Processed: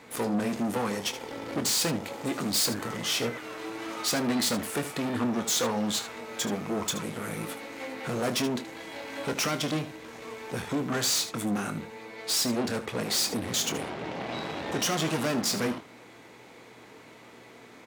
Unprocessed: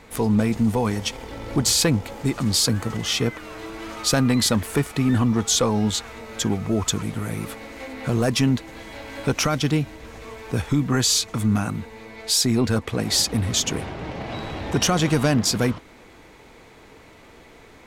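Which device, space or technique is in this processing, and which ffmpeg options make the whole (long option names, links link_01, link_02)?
valve amplifier with mains hum: -filter_complex "[0:a]aeval=exprs='(tanh(17.8*val(0)+0.65)-tanh(0.65))/17.8':channel_layout=same,aeval=exprs='val(0)+0.002*(sin(2*PI*60*n/s)+sin(2*PI*2*60*n/s)/2+sin(2*PI*3*60*n/s)/3+sin(2*PI*4*60*n/s)/4+sin(2*PI*5*60*n/s)/5)':channel_layout=same,highpass=190,asettb=1/sr,asplit=3[link_01][link_02][link_03];[link_01]atrim=end=2.264[link_04];[link_02]atrim=start=2.26:end=2.66,asetpts=PTS-STARTPTS,afade=type=in:duration=0.004:curve=qsin,afade=type=out:start_time=0.396:duration=0.004:curve=qsin,highshelf=frequency=12000:gain=6[link_05];[link_03]atrim=start=2.656[link_06];[link_04][link_05]acrossfade=duration=0.004:curve1=hsin:curve2=qsin[link_07];[link_07][link_06]acrossfade=duration=0.004:curve1=qsin:curve2=hsin,aecho=1:1:25|76:0.335|0.237,volume=1dB"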